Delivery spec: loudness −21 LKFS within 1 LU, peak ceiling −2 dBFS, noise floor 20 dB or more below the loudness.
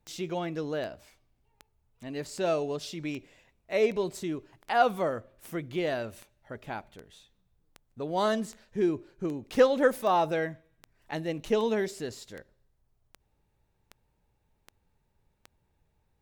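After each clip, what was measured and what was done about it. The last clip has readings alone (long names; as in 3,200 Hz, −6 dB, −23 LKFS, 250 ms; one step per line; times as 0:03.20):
number of clicks 21; integrated loudness −30.0 LKFS; sample peak −9.0 dBFS; target loudness −21.0 LKFS
→ click removal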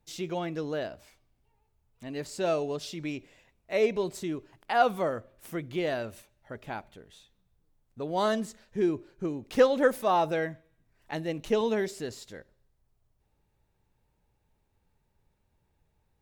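number of clicks 0; integrated loudness −30.0 LKFS; sample peak −9.0 dBFS; target loudness −21.0 LKFS
→ level +9 dB
brickwall limiter −2 dBFS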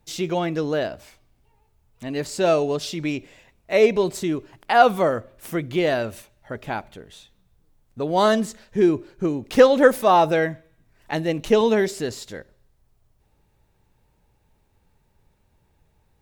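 integrated loudness −21.5 LKFS; sample peak −2.0 dBFS; background noise floor −65 dBFS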